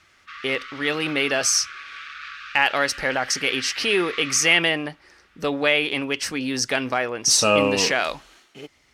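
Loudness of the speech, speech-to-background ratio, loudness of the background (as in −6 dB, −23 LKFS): −21.0 LKFS, 14.5 dB, −35.5 LKFS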